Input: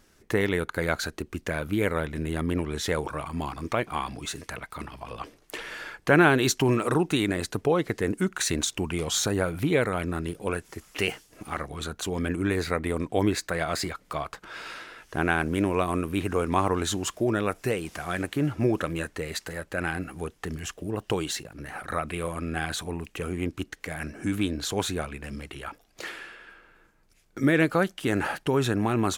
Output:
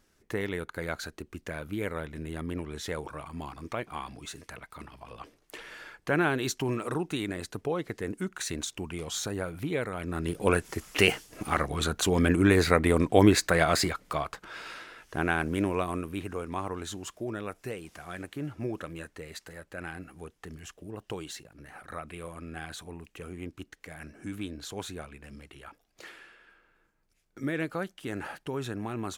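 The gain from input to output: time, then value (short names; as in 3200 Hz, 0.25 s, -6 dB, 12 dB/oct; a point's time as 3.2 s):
9.97 s -7.5 dB
10.44 s +5 dB
13.62 s +5 dB
14.63 s -3 dB
15.66 s -3 dB
16.45 s -10 dB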